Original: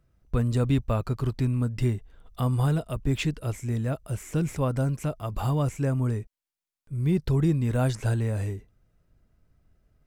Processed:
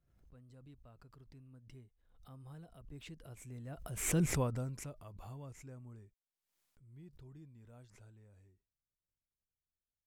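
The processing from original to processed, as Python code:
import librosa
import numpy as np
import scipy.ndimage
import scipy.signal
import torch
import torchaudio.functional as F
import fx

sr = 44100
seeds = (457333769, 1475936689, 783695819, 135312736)

y = fx.doppler_pass(x, sr, speed_mps=17, closest_m=1.6, pass_at_s=4.27)
y = fx.pre_swell(y, sr, db_per_s=73.0)
y = y * 10.0 ** (-2.5 / 20.0)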